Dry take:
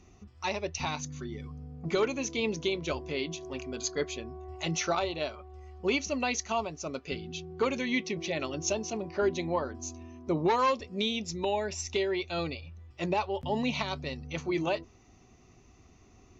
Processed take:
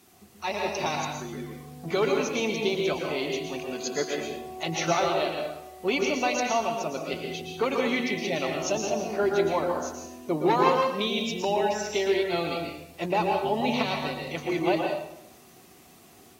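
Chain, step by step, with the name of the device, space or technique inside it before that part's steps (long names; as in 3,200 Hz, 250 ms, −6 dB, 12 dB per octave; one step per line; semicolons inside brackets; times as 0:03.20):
filmed off a television (band-pass filter 170–6,100 Hz; parametric band 730 Hz +5 dB 0.38 octaves; convolution reverb RT60 0.75 s, pre-delay 109 ms, DRR 1.5 dB; white noise bed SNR 29 dB; automatic gain control gain up to 3 dB; level −1.5 dB; AAC 48 kbit/s 44,100 Hz)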